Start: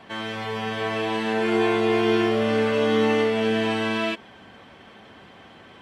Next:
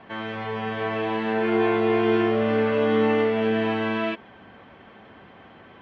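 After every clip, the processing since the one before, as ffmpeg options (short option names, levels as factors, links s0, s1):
-af "lowpass=2400"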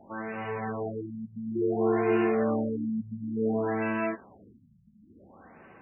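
-af "flanger=delay=3.4:depth=8.9:regen=-48:speed=0.38:shape=sinusoidal,afftfilt=real='re*lt(b*sr/1024,210*pow(3000/210,0.5+0.5*sin(2*PI*0.57*pts/sr)))':imag='im*lt(b*sr/1024,210*pow(3000/210,0.5+0.5*sin(2*PI*0.57*pts/sr)))':win_size=1024:overlap=0.75"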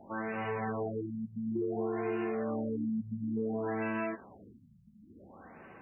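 -af "acompressor=threshold=0.0316:ratio=12"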